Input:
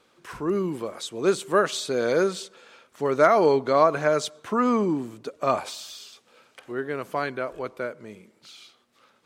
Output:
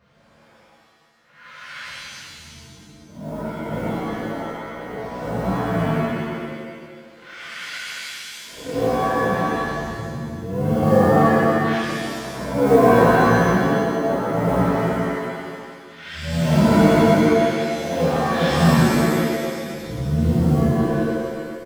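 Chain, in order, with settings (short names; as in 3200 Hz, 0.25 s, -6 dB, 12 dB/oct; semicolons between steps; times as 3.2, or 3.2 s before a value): whole clip reversed; dynamic EQ 1100 Hz, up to +7 dB, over -34 dBFS, Q 0.99; in parallel at +2 dB: compressor 6:1, threshold -32 dBFS, peak gain reduction 21.5 dB; on the sum: speed mistake 78 rpm record played at 33 rpm; short-mantissa float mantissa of 4-bit; bell 320 Hz -12 dB 0.39 oct; on a send: echo 0.398 s -8.5 dB; on the sum: tremolo 0.54 Hz, depth 89%; shimmer reverb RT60 1.6 s, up +7 st, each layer -2 dB, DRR -9.5 dB; gain -7 dB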